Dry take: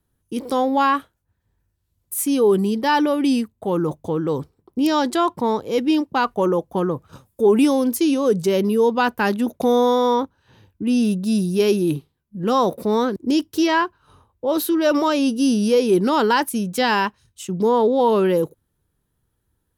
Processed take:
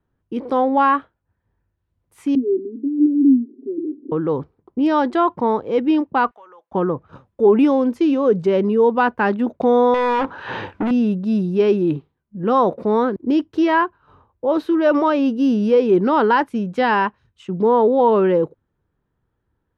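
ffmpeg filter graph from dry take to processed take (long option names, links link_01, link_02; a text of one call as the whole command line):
ffmpeg -i in.wav -filter_complex "[0:a]asettb=1/sr,asplit=3[link_01][link_02][link_03];[link_01]atrim=end=2.354[link_04];[link_02]atrim=start=2.35:end=4.12,asetpts=PTS-STARTPTS,afade=type=in:duration=0.004:curve=qsin,afade=type=out:start_time=1.766:duration=0.004:curve=qsin,aeval=exprs='val(0)+0.5*0.0335*sgn(val(0))':channel_layout=same,asuperpass=centerf=300:order=8:qfactor=2.2,aecho=1:1:7.3:0.64,atrim=end_sample=78057[link_05];[link_03]atrim=start=4.116[link_06];[link_04][link_05]acrossfade=duration=0.004:curve1=hsin:curve2=qsin[link_07];[link_07][link_06]acrossfade=duration=0.004:curve1=qsin:curve2=hsin,asettb=1/sr,asplit=3[link_08][link_09][link_10];[link_08]atrim=end=6.314[link_11];[link_09]atrim=start=6.31:end=6.72,asetpts=PTS-STARTPTS,afade=type=in:duration=0.004:curve=qsin,afade=type=out:start_time=0.406:duration=0.004:curve=qsin,highpass=1400,acompressor=threshold=-48dB:ratio=3:attack=3.2:release=140:knee=1:detection=peak[link_12];[link_10]atrim=start=6.716[link_13];[link_11][link_12]acrossfade=duration=0.004:curve1=hsin:curve2=qsin[link_14];[link_14][link_13]acrossfade=duration=0.004:curve1=qsin:curve2=hsin,asettb=1/sr,asplit=3[link_15][link_16][link_17];[link_15]atrim=end=9.944[link_18];[link_16]atrim=start=9.94:end=10.91,asetpts=PTS-STARTPTS,afade=type=in:duration=0.004:curve=qsin,afade=type=out:start_time=0.966:duration=0.004:curve=qsin,acompressor=threshold=-30dB:ratio=4:attack=3.2:release=140:knee=1:detection=peak,asplit=2[link_19][link_20];[link_20]highpass=frequency=720:poles=1,volume=38dB,asoftclip=type=tanh:threshold=-14dB[link_21];[link_19][link_21]amix=inputs=2:normalize=0,lowpass=frequency=6600:poles=1,volume=-6dB[link_22];[link_17]atrim=start=10.906[link_23];[link_18][link_22]acrossfade=duration=0.004:curve1=hsin:curve2=qsin[link_24];[link_24][link_23]acrossfade=duration=0.004:curve1=qsin:curve2=hsin,lowpass=1900,lowshelf=frequency=200:gain=-5,volume=3dB" out.wav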